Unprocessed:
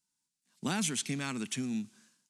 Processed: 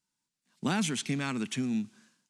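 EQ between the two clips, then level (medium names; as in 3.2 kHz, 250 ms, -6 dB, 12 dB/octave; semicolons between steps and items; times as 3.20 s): treble shelf 5.7 kHz -10.5 dB; +4.0 dB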